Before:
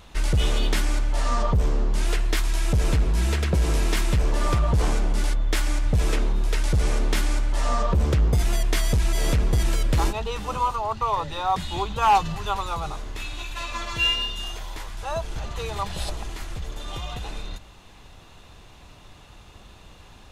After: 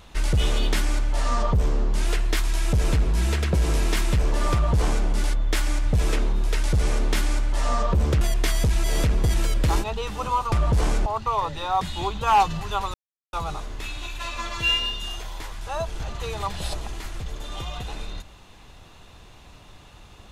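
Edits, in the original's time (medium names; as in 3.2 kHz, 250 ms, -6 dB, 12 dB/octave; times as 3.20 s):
4.53–5.07 s: copy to 10.81 s
8.21–8.50 s: delete
12.69 s: insert silence 0.39 s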